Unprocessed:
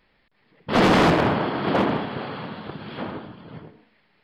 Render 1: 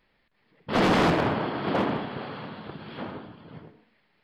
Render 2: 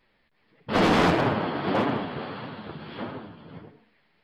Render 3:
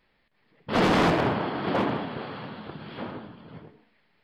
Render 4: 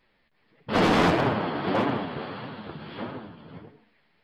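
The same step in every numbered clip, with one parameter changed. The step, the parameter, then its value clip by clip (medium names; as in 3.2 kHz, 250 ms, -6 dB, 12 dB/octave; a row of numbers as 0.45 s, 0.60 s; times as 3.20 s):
flange, regen: -87%, -15%, +78%, +29%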